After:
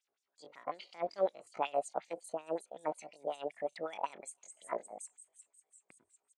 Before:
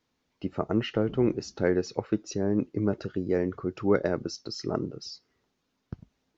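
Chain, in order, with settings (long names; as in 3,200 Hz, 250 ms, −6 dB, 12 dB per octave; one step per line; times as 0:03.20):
delay with a high-pass on its return 348 ms, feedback 68%, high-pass 5,200 Hz, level −8.5 dB
auto-filter band-pass sine 5.4 Hz 360–5,000 Hz
pitch shifter +8 semitones
level −1.5 dB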